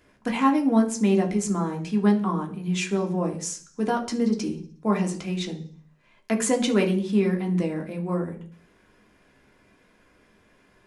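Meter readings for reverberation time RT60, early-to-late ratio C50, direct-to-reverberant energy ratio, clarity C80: 0.45 s, 12.5 dB, 1.5 dB, 16.5 dB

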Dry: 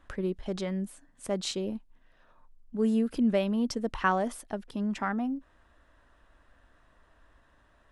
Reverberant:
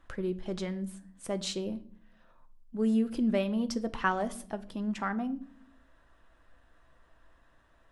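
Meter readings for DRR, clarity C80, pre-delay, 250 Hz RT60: 9.0 dB, 22.0 dB, 6 ms, 1.0 s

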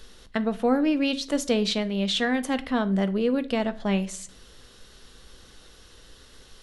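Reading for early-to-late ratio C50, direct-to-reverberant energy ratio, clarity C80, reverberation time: 19.0 dB, 11.0 dB, 23.0 dB, 0.45 s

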